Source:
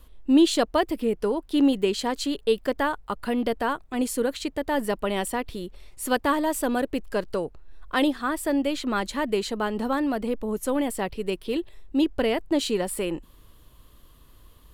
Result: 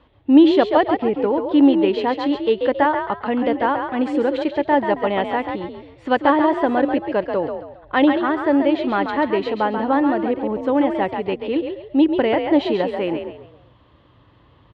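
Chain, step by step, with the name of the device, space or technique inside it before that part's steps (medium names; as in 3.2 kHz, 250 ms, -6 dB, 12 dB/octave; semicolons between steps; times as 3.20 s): frequency-shifting delay pedal into a guitar cabinet (frequency-shifting echo 136 ms, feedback 33%, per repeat +47 Hz, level -6.5 dB; cabinet simulation 93–3400 Hz, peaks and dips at 120 Hz +7 dB, 300 Hz +6 dB, 570 Hz +5 dB, 850 Hz +9 dB, 1.9 kHz +4 dB); 3.95–4.49 s: peaking EQ 8.5 kHz +11.5 dB 0.48 oct; trim +2 dB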